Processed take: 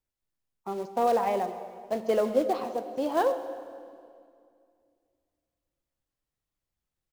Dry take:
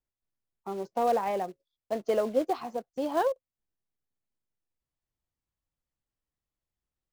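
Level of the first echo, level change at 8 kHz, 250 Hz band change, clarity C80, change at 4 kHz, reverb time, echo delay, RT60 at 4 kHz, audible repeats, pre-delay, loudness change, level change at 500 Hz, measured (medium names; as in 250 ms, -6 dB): -19.5 dB, +2.0 dB, +2.0 dB, 11.0 dB, +2.0 dB, 2.3 s, 135 ms, 1.9 s, 1, 3 ms, +2.0 dB, +2.0 dB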